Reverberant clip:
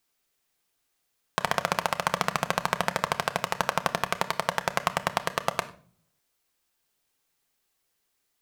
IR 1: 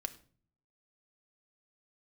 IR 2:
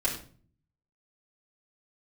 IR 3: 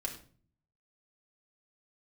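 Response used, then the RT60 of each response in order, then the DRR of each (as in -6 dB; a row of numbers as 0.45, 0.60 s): 1; 0.45, 0.45, 0.45 s; 8.0, -8.5, -1.0 dB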